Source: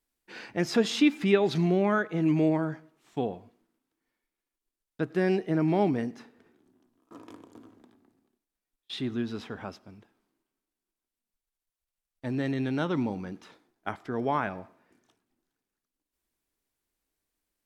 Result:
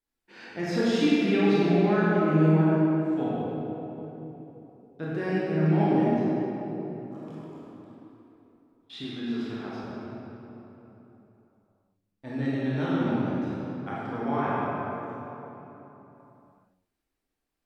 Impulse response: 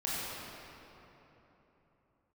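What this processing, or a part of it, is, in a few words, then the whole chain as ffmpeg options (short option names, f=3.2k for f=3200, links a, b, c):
swimming-pool hall: -filter_complex "[1:a]atrim=start_sample=2205[a];[0:a][a]afir=irnorm=-1:irlink=0,highshelf=f=5.9k:g=-6,asettb=1/sr,asplit=3[b][c][d];[b]atrim=end=9.044[e];[c]atrim=start=9.04:end=9.84,asetpts=PTS-STARTPTS,afade=t=in:d=0.004:c=qsin,afade=t=out:st=0.796:d=0.004:c=qsin,highpass=f=220:p=1[f];[d]atrim=start=9.836[g];[e][f]acrossfade=d=0.004:c1=hsin:c2=qsin[h];[h][g]acrossfade=d=0.004:c1=qsin:c2=hsin,volume=-4.5dB"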